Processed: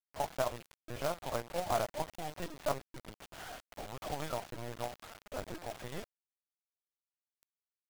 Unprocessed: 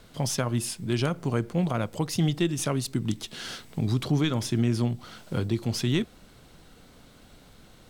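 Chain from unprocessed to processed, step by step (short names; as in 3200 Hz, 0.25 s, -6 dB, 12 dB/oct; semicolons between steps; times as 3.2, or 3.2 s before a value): ladder band-pass 780 Hz, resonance 55%; LPC vocoder at 8 kHz pitch kept; companded quantiser 4-bit; gain +7 dB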